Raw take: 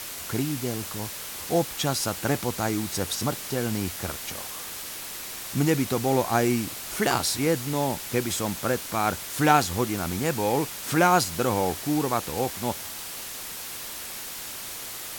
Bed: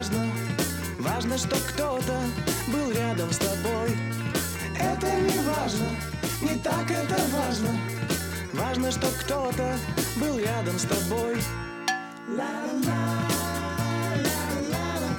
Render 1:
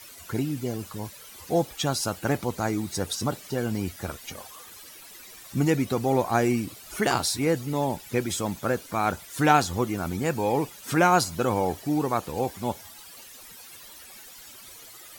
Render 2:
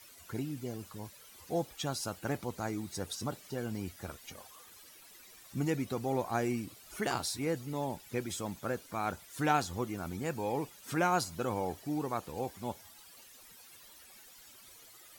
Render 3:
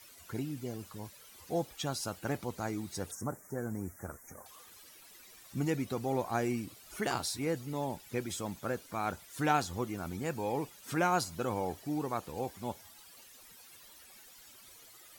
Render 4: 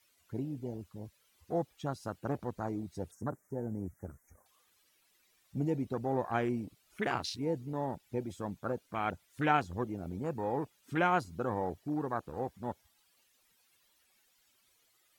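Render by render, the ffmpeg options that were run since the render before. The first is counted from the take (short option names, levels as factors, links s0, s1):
-af "afftdn=nr=14:nf=-37"
-af "volume=0.335"
-filter_complex "[0:a]asettb=1/sr,asplit=3[s0][s1][s2];[s0]atrim=end=3.114[s3];[s1]atrim=start=3.11:end=4.46,asetpts=PTS-STARTPTS,afade=t=in:d=0.004:c=qsin,afade=t=out:st=1.346:d=0.004:c=qsin,asuperstop=centerf=3500:order=8:qfactor=0.82[s4];[s2]atrim=start=4.456[s5];[s3][s4]acrossfade=d=0.004:c1=hsin:c2=qsin[s6];[s6][s5]acrossfade=d=0.004:c1=qsin:c2=hsin"
-af "afwtdn=0.0112,equalizer=f=2700:w=0.9:g=3.5"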